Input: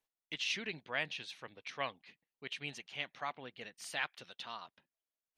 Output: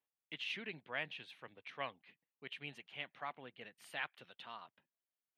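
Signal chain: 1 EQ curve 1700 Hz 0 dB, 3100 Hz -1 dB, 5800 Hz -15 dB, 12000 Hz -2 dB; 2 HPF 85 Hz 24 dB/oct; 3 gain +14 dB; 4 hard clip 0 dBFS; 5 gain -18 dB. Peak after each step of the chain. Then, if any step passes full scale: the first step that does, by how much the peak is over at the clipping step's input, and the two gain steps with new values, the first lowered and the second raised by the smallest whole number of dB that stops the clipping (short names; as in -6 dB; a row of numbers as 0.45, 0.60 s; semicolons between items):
-20.0, -20.0, -6.0, -6.0, -24.0 dBFS; no overload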